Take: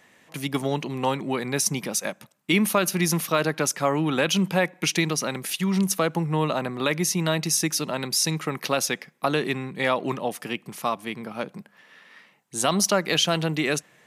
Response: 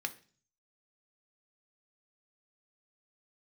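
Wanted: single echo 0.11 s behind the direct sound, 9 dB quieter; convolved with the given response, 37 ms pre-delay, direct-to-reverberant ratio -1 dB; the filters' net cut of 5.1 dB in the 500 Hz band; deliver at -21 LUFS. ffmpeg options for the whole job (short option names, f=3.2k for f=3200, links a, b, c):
-filter_complex "[0:a]equalizer=f=500:t=o:g=-6.5,aecho=1:1:110:0.355,asplit=2[a][b];[1:a]atrim=start_sample=2205,adelay=37[c];[b][c]afir=irnorm=-1:irlink=0,volume=-1dB[d];[a][d]amix=inputs=2:normalize=0,volume=1.5dB"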